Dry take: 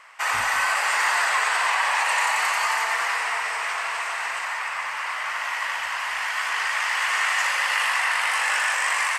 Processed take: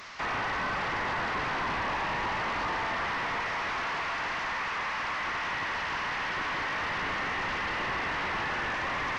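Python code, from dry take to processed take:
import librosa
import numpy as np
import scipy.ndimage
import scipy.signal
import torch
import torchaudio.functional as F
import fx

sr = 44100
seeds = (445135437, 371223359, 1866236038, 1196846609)

y = fx.delta_mod(x, sr, bps=32000, step_db=-38.5)
y = 10.0 ** (-25.5 / 20.0) * np.tanh(y / 10.0 ** (-25.5 / 20.0))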